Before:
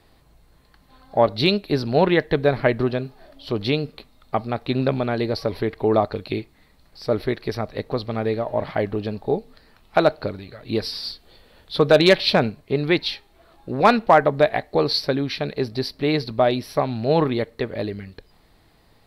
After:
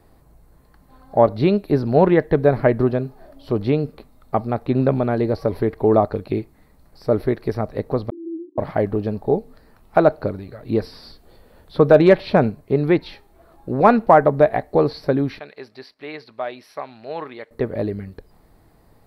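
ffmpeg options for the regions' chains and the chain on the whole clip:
-filter_complex "[0:a]asettb=1/sr,asplit=3[s0][s1][s2];[s0]atrim=end=8.104[s3];[s1]atrim=start=8.1:end=8.58,asetpts=PTS-STARTPTS,afade=t=in:d=0.004:c=qsin,afade=t=out:st=0.476:d=0.004:c=qsin,asuperpass=centerf=320:order=20:qfactor=2.9,agate=range=0.0224:threshold=0.00631:ratio=3:release=100:detection=peak[s4];[s2]atrim=start=8.576[s5];[s3][s4]acrossfade=d=0.004:c1=hsin:c2=qsin[s6];[s6][s5]acrossfade=d=0.004:c1=qsin:c2=hsin,asettb=1/sr,asplit=3[s7][s8][s9];[s7]atrim=end=15.394[s10];[s8]atrim=start=15.39:end=17.51,asetpts=PTS-STARTPTS,afade=t=in:d=0.004:c=qsin,afade=t=out:st=2.116:d=0.004:c=qsin,agate=range=0.398:threshold=0.00708:ratio=16:release=100:detection=peak,acompressor=mode=upward:threshold=0.0126:ratio=2.5:attack=3.2:release=140:knee=2.83:detection=peak,bandpass=f=2700:t=q:w=0.99[s11];[s9]atrim=start=17.506[s12];[s10][s11]acrossfade=d=0.004:c1=hsin:c2=qsin[s13];[s13][s12]acrossfade=d=0.004:c1=qsin:c2=hsin,acrossover=split=3500[s14][s15];[s15]acompressor=threshold=0.00794:ratio=4:attack=1:release=60[s16];[s14][s16]amix=inputs=2:normalize=0,equalizer=f=3400:t=o:w=1.8:g=-13.5,volume=1.58"

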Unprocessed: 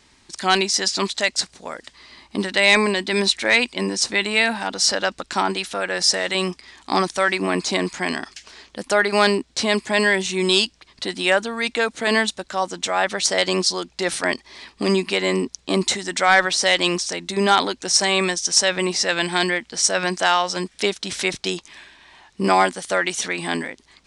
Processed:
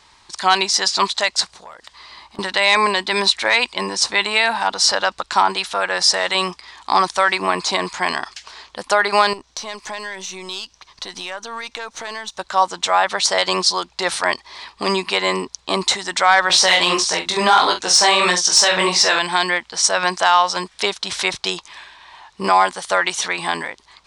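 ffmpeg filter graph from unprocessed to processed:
-filter_complex "[0:a]asettb=1/sr,asplit=3[s0][s1][s2];[s0]atrim=end=1.544[s3];[s1]atrim=start=1.54:end=2.39,asetpts=PTS-STARTPTS,afade=t=in:d=0.004:c=qsin,afade=t=out:st=0.846:d=0.004:c=qsin,asoftclip=type=hard:threshold=0.0668,acompressor=threshold=0.0112:ratio=10:attack=3.2:release=140:knee=1:detection=peak[s4];[s2]atrim=start=2.386[s5];[s3][s4]acrossfade=d=0.004:c1=hsin:c2=qsin[s6];[s6][s5]acrossfade=d=0.004:c1=qsin:c2=hsin,asettb=1/sr,asplit=3[s7][s8][s9];[s7]atrim=end=9.334[s10];[s8]atrim=start=9.33:end=12.38,asetpts=PTS-STARTPTS,afade=t=in:d=0.004:c=qsin,afade=t=out:st=3.046:d=0.004:c=qsin,aeval=exprs='if(lt(val(0),0),0.708*val(0),val(0))':c=same,equalizer=f=6000:w=5.9:g=11,acompressor=threshold=0.0355:ratio=6:attack=3.2:release=140:knee=1:detection=peak[s11];[s9]atrim=start=12.376[s12];[s10][s11]acrossfade=d=0.004:c1=hsin:c2=qsin[s13];[s13][s12]acrossfade=d=0.004:c1=qsin:c2=hsin,asettb=1/sr,asplit=3[s14][s15][s16];[s14]atrim=end=16.484[s17];[s15]atrim=start=16.48:end=19.19,asetpts=PTS-STARTPTS,afade=t=in:d=0.004:c=qsin,afade=t=out:st=2.706:d=0.004:c=qsin,flanger=delay=17:depth=6.6:speed=1.6,asplit=2[s18][s19];[s19]adelay=44,volume=0.355[s20];[s18][s20]amix=inputs=2:normalize=0,atrim=end_sample=119511,acontrast=77[s21];[s16]atrim=start=19.186[s22];[s17][s21]acrossfade=d=0.004:c1=hsin:c2=qsin[s23];[s23][s22]acrossfade=d=0.004:c1=qsin:c2=hsin,equalizer=f=250:t=o:w=1:g=-8,equalizer=f=1000:t=o:w=1:g=11,equalizer=f=4000:t=o:w=1:g=5,alimiter=limit=0.668:level=0:latency=1:release=86"

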